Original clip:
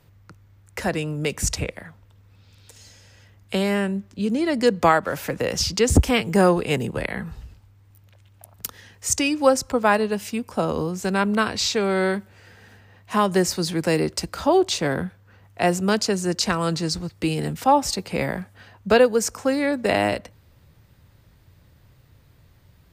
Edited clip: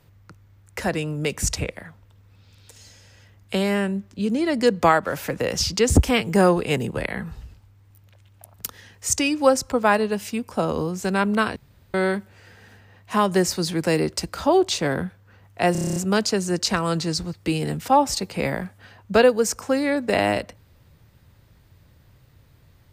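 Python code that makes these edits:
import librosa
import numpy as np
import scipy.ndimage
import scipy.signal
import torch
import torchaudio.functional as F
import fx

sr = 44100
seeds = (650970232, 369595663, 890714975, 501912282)

y = fx.edit(x, sr, fx.room_tone_fill(start_s=11.56, length_s=0.38),
    fx.stutter(start_s=15.72, slice_s=0.03, count=9), tone=tone)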